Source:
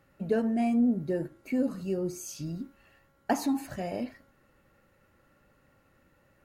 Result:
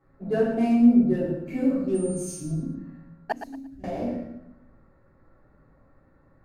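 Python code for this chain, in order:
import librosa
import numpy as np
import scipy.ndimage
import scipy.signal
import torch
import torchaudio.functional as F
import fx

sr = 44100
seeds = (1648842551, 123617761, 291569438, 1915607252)

y = fx.wiener(x, sr, points=15)
y = fx.room_shoebox(y, sr, seeds[0], volume_m3=170.0, walls='mixed', distance_m=3.7)
y = fx.dmg_tone(y, sr, hz=9000.0, level_db=-33.0, at=(1.94, 2.39), fade=0.02)
y = fx.tone_stack(y, sr, knobs='10-0-1', at=(3.32, 3.84))
y = fx.echo_feedback(y, sr, ms=115, feedback_pct=27, wet_db=-10)
y = y * librosa.db_to_amplitude(-7.5)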